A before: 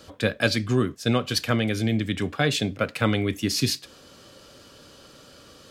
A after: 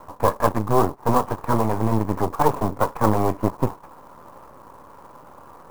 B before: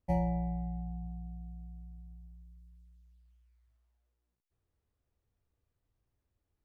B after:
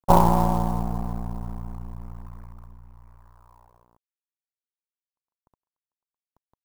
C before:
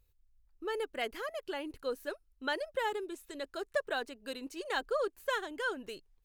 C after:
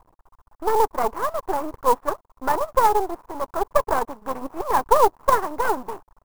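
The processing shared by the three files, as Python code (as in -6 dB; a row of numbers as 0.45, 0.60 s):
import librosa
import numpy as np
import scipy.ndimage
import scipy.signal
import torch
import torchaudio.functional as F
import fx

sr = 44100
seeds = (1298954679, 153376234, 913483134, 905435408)

y = fx.cvsd(x, sr, bps=16000)
y = fx.dynamic_eq(y, sr, hz=430.0, q=2.9, threshold_db=-41.0, ratio=4.0, max_db=5)
y = np.maximum(y, 0.0)
y = fx.lowpass_res(y, sr, hz=1000.0, q=4.8)
y = fx.clock_jitter(y, sr, seeds[0], jitter_ms=0.022)
y = librosa.util.normalize(y) * 10.0 ** (-2 / 20.0)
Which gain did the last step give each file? +6.0, +15.5, +14.5 dB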